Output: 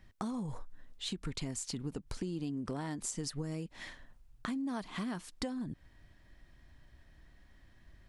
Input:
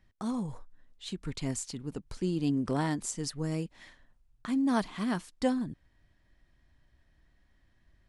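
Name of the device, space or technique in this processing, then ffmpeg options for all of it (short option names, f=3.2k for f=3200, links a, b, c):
serial compression, peaks first: -af "acompressor=threshold=-36dB:ratio=6,acompressor=threshold=-45dB:ratio=2,volume=6.5dB"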